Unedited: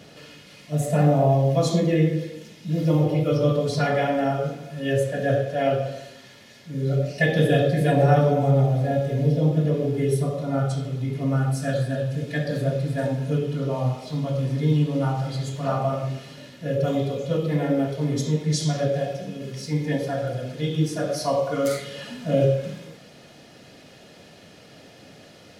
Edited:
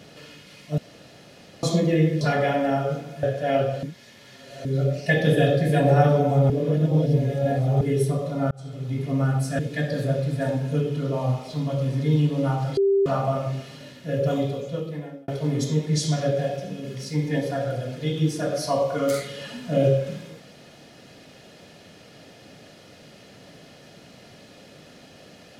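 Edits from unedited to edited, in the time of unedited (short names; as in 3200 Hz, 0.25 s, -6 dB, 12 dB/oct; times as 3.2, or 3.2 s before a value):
0.78–1.63 room tone
2.21–3.75 cut
4.77–5.35 cut
5.95–6.77 reverse
8.62–9.93 reverse
10.63–11.08 fade in
11.71–12.16 cut
15.34–15.63 bleep 394 Hz -16 dBFS
16.91–17.85 fade out linear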